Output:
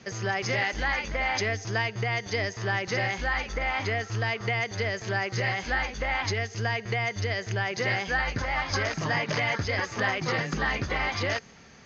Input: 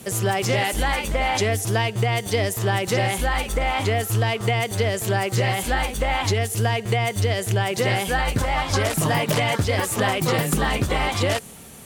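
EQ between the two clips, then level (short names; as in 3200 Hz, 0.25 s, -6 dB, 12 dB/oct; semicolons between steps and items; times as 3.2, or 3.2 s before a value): rippled Chebyshev low-pass 6600 Hz, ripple 9 dB; 0.0 dB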